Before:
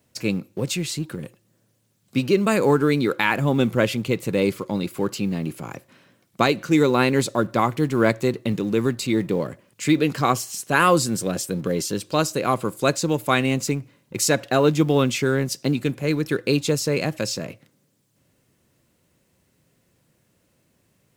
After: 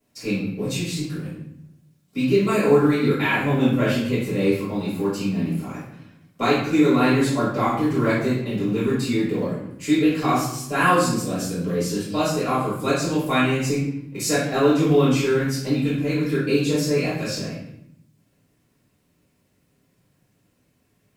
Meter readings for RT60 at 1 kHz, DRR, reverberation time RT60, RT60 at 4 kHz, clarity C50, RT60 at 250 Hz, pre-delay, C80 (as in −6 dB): 0.70 s, −13.0 dB, 0.75 s, 0.60 s, 0.5 dB, 1.1 s, 4 ms, 5.0 dB